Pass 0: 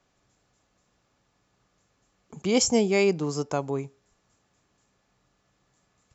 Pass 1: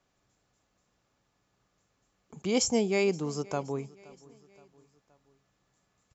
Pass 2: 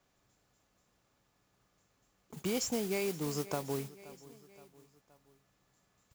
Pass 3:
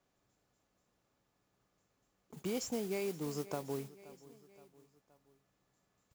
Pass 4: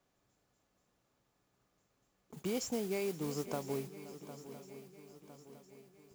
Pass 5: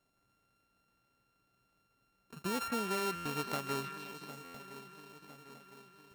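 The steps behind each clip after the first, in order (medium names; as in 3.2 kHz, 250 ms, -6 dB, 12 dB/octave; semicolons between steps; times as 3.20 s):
feedback delay 522 ms, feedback 52%, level -23 dB; trim -4.5 dB
compression 6:1, threshold -31 dBFS, peak gain reduction 9.5 dB; modulation noise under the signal 11 dB
peaking EQ 370 Hz +4 dB 2.7 oct; trim -6.5 dB
shuffle delay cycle 1008 ms, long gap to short 3:1, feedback 49%, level -14 dB; trim +1 dB
sorted samples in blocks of 32 samples; repeats whose band climbs or falls 154 ms, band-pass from 1.7 kHz, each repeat 0.7 oct, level -4 dB; buffer glitch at 3.15/4.44 s, samples 512, times 8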